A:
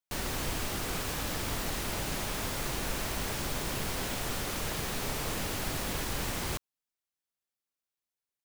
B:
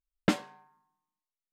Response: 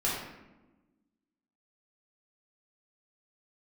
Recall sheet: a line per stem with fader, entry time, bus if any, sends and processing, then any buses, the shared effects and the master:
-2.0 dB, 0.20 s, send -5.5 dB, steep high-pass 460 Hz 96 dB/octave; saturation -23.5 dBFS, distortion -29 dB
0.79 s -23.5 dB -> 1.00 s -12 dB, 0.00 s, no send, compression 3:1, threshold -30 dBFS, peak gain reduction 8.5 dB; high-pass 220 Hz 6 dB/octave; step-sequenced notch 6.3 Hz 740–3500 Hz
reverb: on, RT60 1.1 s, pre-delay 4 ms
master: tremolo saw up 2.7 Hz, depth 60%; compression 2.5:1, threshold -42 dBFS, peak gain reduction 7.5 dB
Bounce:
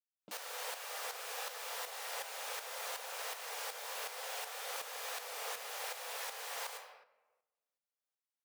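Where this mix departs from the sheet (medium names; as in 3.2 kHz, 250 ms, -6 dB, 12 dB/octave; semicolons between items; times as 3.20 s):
stem A -2.0 dB -> -8.5 dB; master: missing compression 2.5:1, threshold -42 dBFS, peak gain reduction 7.5 dB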